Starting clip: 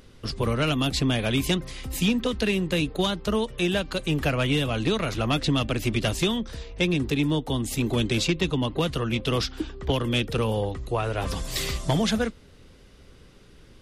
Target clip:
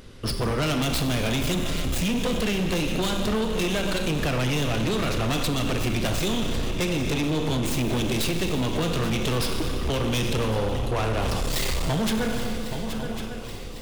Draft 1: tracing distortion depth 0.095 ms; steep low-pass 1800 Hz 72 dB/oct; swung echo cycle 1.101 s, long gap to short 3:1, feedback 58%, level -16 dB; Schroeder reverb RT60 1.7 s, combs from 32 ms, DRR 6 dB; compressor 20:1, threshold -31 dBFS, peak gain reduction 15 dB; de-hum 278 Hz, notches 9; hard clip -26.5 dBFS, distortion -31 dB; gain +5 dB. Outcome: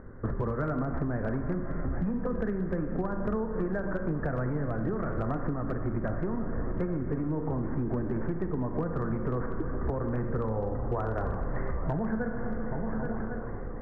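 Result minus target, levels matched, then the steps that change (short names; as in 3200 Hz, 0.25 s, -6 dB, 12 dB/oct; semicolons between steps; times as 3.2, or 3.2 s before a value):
compressor: peak gain reduction +9 dB; 2000 Hz band -5.0 dB
change: compressor 20:1, threshold -21 dBFS, peak gain reduction 6 dB; remove: steep low-pass 1800 Hz 72 dB/oct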